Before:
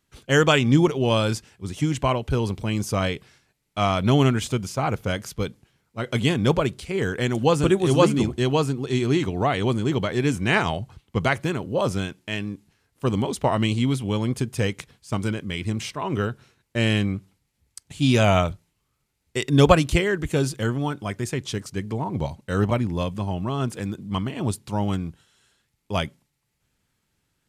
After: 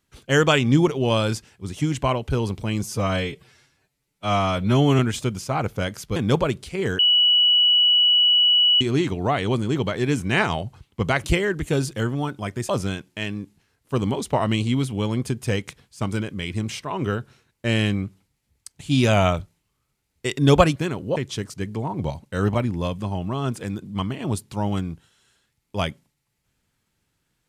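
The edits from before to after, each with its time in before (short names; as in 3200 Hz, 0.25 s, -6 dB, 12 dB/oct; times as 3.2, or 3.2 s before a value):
2.83–4.27 stretch 1.5×
5.44–6.32 cut
7.15–8.97 bleep 2940 Hz -13.5 dBFS
11.4–11.8 swap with 19.87–21.32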